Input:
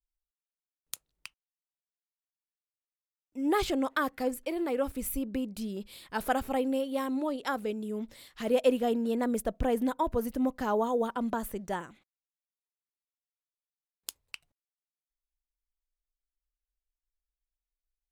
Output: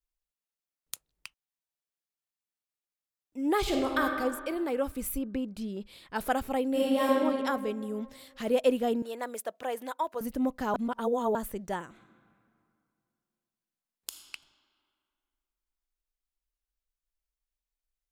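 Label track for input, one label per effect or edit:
3.590000	4.020000	reverb throw, RT60 1.8 s, DRR 0.5 dB
5.180000	6.160000	treble shelf 7.1 kHz -12 dB
6.710000	7.110000	reverb throw, RT60 2 s, DRR -8 dB
9.020000	10.210000	high-pass 610 Hz
10.740000	11.350000	reverse
11.850000	14.200000	reverb throw, RT60 2.5 s, DRR 3.5 dB

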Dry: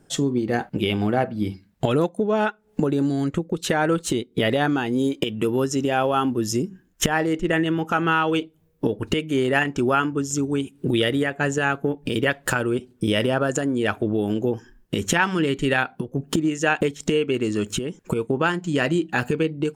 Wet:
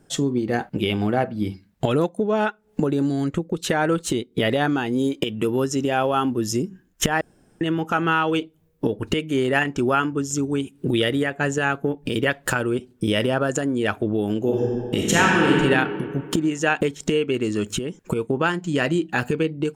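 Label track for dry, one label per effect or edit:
7.210000	7.610000	room tone
14.380000	15.580000	reverb throw, RT60 2.1 s, DRR -3 dB

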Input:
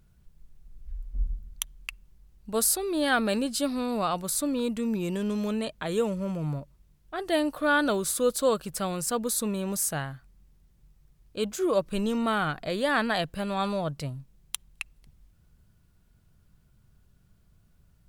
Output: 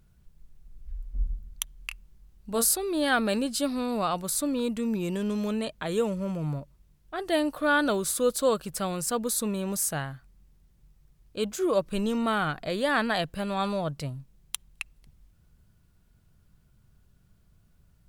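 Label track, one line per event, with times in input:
1.750000	2.740000	doubling 26 ms -8 dB

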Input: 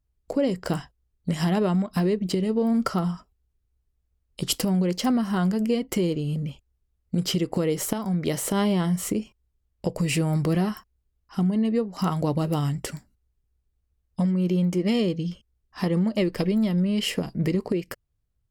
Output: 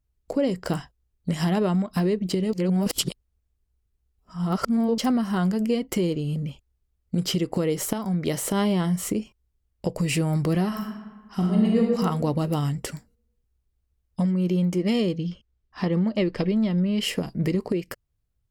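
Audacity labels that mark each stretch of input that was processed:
2.530000	4.980000	reverse
10.670000	11.810000	reverb throw, RT60 1.4 s, DRR -1.5 dB
15.180000	17.000000	low-pass 5 kHz

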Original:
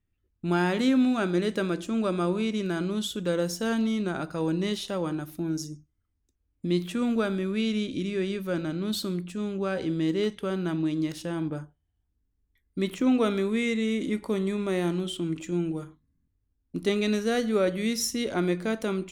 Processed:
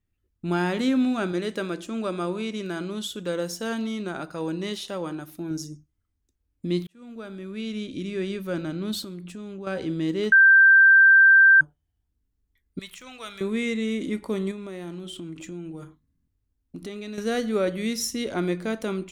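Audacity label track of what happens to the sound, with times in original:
1.320000	5.510000	bass shelf 200 Hz -7.5 dB
6.870000	8.270000	fade in
9.040000	9.670000	compression, threshold -34 dBFS
10.320000	11.610000	bleep 1.57 kHz -10.5 dBFS
12.790000	13.410000	amplifier tone stack bass-middle-treble 10-0-10
14.510000	17.180000	compression 4:1, threshold -34 dBFS

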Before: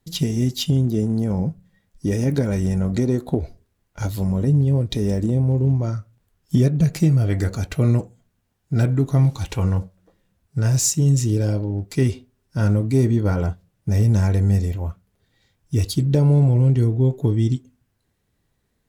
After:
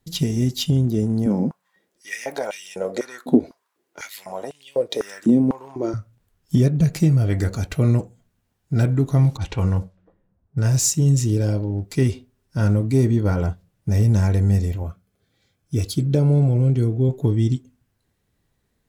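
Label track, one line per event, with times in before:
1.260000	5.940000	step-sequenced high-pass 4 Hz 250–2900 Hz
9.370000	10.600000	level-controlled noise filter closes to 860 Hz, open at -19.5 dBFS
14.830000	17.090000	comb of notches 940 Hz

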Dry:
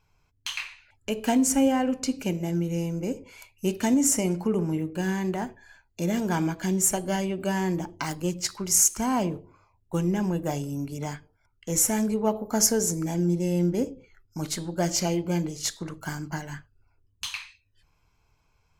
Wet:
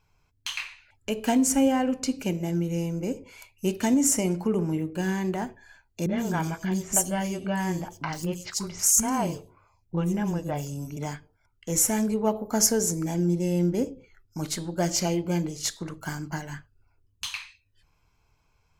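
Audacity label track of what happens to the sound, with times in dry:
6.060000	10.970000	three bands offset in time lows, mids, highs 30/120 ms, splits 350/3800 Hz

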